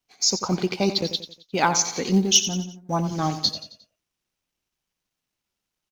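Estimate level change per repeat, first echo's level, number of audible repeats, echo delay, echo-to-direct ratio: -7.0 dB, -11.5 dB, 4, 89 ms, -10.5 dB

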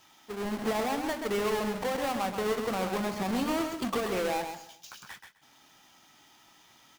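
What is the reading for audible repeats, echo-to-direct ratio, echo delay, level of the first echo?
3, -6.5 dB, 0.131 s, -6.5 dB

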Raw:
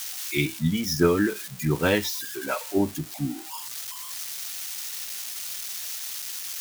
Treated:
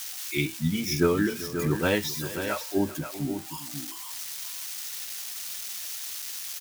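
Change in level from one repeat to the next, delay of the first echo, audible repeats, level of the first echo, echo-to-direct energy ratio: no steady repeat, 0.391 s, 2, -17.0 dB, -8.5 dB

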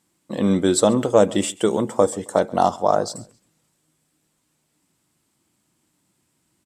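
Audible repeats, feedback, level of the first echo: 2, 34%, -23.0 dB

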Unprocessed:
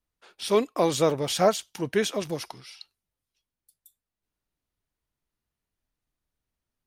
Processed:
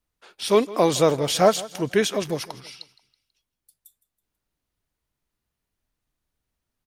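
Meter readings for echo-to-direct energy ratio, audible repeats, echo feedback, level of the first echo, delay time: -18.0 dB, 3, 41%, -19.0 dB, 0.163 s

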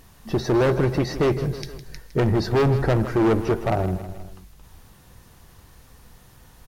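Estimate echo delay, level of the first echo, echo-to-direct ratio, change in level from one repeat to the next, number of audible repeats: 0.159 s, -13.0 dB, -11.5 dB, -5.0 dB, 3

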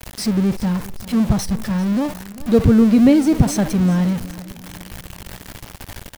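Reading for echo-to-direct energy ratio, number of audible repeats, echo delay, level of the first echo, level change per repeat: -17.5 dB, 3, 0.393 s, -18.5 dB, -6.0 dB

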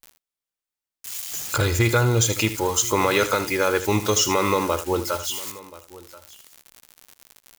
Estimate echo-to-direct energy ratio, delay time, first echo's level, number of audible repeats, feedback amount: -12.0 dB, 78 ms, -12.5 dB, 3, no steady repeat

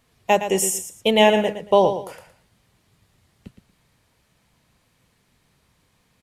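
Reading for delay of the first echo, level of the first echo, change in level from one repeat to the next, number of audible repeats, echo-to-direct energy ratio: 0.115 s, -10.0 dB, -12.0 dB, 2, -9.5 dB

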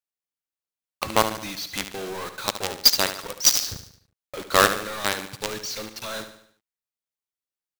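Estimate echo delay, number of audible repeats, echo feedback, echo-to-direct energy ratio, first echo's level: 73 ms, 4, 48%, -9.5 dB, -10.5 dB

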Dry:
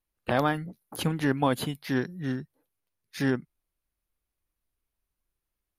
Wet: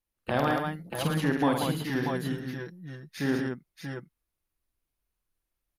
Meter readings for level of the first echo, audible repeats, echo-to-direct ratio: -5.0 dB, 4, 0.5 dB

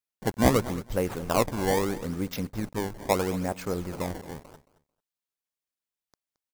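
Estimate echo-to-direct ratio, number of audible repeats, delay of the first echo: -17.0 dB, 2, 0.221 s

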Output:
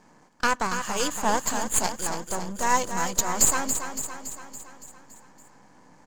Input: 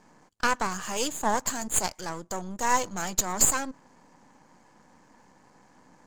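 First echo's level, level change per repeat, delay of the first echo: -8.0 dB, -4.5 dB, 0.282 s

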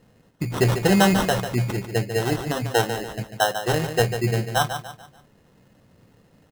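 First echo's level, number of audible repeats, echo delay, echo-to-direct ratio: -9.0 dB, 4, 0.145 s, -8.5 dB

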